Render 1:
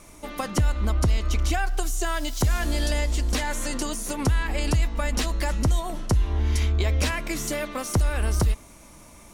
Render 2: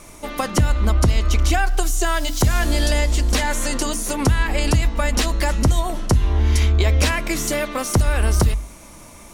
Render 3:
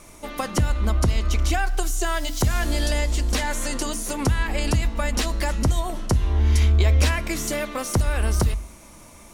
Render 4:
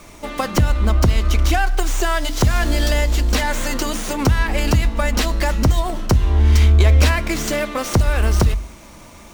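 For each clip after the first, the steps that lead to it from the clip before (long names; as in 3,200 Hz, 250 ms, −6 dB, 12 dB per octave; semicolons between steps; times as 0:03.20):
mains-hum notches 50/100/150/200/250/300 Hz; level +6.5 dB
tuned comb filter 73 Hz, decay 0.9 s, harmonics odd, mix 40%
windowed peak hold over 3 samples; level +5.5 dB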